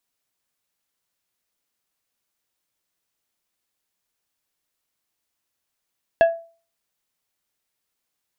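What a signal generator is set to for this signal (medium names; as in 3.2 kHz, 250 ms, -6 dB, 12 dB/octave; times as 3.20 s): glass hit plate, lowest mode 667 Hz, decay 0.38 s, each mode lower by 10 dB, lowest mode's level -8 dB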